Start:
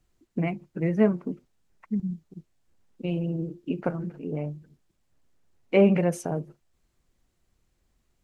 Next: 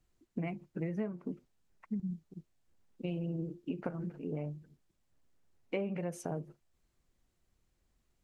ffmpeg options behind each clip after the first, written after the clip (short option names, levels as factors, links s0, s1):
-af "acompressor=threshold=0.0447:ratio=12,volume=0.562"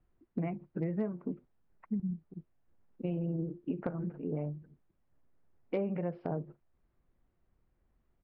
-af "lowpass=1600,aresample=11025,volume=18.8,asoftclip=hard,volume=0.0531,aresample=44100,volume=1.33"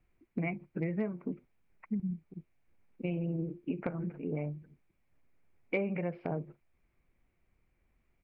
-af "equalizer=f=2300:t=o:w=0.46:g=15"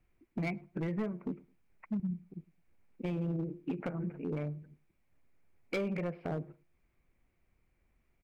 -filter_complex "[0:a]asoftclip=type=hard:threshold=0.0355,asplit=2[s0][s1];[s1]adelay=106,lowpass=f=1100:p=1,volume=0.0794,asplit=2[s2][s3];[s3]adelay=106,lowpass=f=1100:p=1,volume=0.24[s4];[s0][s2][s4]amix=inputs=3:normalize=0"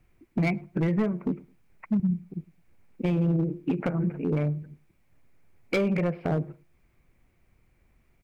-af "equalizer=f=120:w=1.2:g=3.5,volume=2.66"